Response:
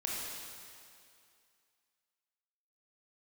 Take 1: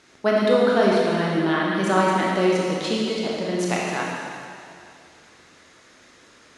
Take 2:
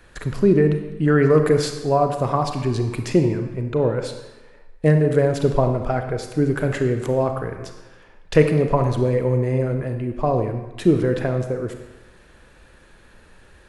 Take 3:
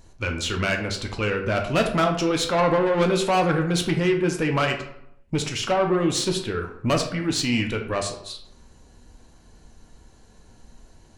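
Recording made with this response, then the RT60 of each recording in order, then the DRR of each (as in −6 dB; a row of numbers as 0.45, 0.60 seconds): 1; 2.4, 1.2, 0.75 seconds; −4.5, 5.5, 3.0 decibels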